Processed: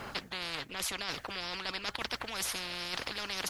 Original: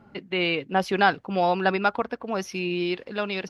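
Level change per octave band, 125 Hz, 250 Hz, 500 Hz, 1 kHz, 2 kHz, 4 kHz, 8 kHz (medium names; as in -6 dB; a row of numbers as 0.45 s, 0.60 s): -16.0 dB, -19.0 dB, -19.0 dB, -16.5 dB, -10.5 dB, -2.5 dB, +8.0 dB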